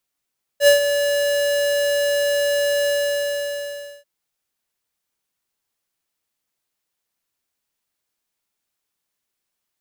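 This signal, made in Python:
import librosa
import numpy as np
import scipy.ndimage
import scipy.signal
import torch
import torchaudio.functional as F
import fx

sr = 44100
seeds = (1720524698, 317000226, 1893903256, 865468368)

y = fx.adsr_tone(sr, wave='square', hz=574.0, attack_ms=74.0, decay_ms=118.0, sustain_db=-9.5, held_s=2.27, release_ms=1170.0, level_db=-10.0)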